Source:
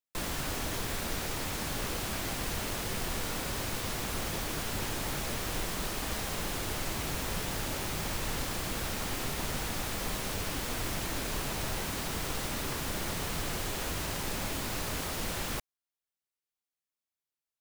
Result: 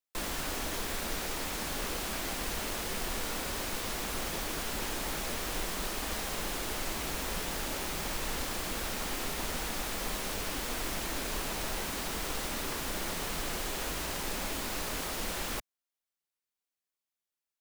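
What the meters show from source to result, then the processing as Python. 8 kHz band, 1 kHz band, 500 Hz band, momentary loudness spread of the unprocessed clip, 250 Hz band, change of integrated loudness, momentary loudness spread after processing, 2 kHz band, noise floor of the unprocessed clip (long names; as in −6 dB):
0.0 dB, 0.0 dB, −0.5 dB, 0 LU, −2.0 dB, −0.5 dB, 0 LU, 0.0 dB, below −85 dBFS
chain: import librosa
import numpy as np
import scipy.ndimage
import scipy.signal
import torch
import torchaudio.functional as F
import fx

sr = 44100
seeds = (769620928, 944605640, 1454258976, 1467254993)

y = fx.peak_eq(x, sr, hz=110.0, db=-12.5, octaves=0.86)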